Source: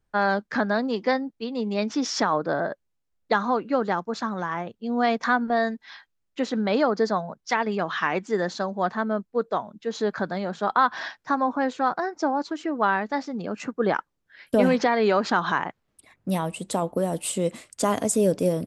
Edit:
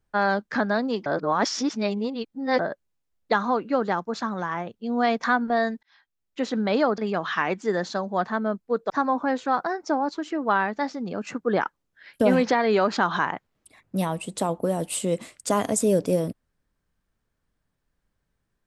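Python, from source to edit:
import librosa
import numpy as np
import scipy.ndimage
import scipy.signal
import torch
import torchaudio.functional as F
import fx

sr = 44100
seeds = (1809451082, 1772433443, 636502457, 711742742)

y = fx.edit(x, sr, fx.reverse_span(start_s=1.06, length_s=1.53),
    fx.fade_in_span(start_s=5.83, length_s=0.64),
    fx.cut(start_s=6.98, length_s=0.65),
    fx.cut(start_s=9.55, length_s=1.68), tone=tone)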